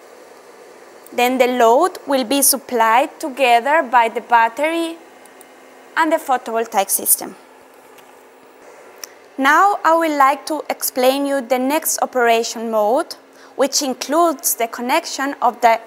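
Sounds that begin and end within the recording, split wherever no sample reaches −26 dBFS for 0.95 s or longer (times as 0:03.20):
0:01.07–0:07.29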